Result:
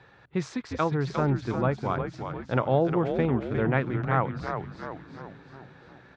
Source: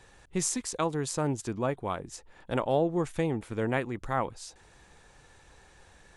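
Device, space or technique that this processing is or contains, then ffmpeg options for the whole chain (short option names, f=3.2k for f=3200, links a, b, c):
frequency-shifting delay pedal into a guitar cabinet: -filter_complex "[0:a]asplit=8[a][b][c][d][e][f][g][h];[b]adelay=355,afreqshift=-100,volume=-6dB[i];[c]adelay=710,afreqshift=-200,volume=-11.4dB[j];[d]adelay=1065,afreqshift=-300,volume=-16.7dB[k];[e]adelay=1420,afreqshift=-400,volume=-22.1dB[l];[f]adelay=1775,afreqshift=-500,volume=-27.4dB[m];[g]adelay=2130,afreqshift=-600,volume=-32.8dB[n];[h]adelay=2485,afreqshift=-700,volume=-38.1dB[o];[a][i][j][k][l][m][n][o]amix=inputs=8:normalize=0,highpass=100,equalizer=f=130:t=q:w=4:g=9,equalizer=f=1.4k:t=q:w=4:g=5,equalizer=f=3k:t=q:w=4:g=-5,lowpass=f=3.9k:w=0.5412,lowpass=f=3.9k:w=1.3066,asettb=1/sr,asplit=3[p][q][r];[p]atrim=end=0.674[s];[q]atrim=start=0.67:end=1.47,asetpts=PTS-STARTPTS,afade=t=in:d=0.004:c=qsin,afade=t=out:st=0.796:d=0.004:c=qsin,lowpass=7.5k[t];[r]atrim=start=1.466[u];[s][t]acrossfade=d=0.004:c1=hsin:c2=qsin[v];[v][u]acrossfade=d=0.004:c1=qsin:c2=hsin,volume=2dB"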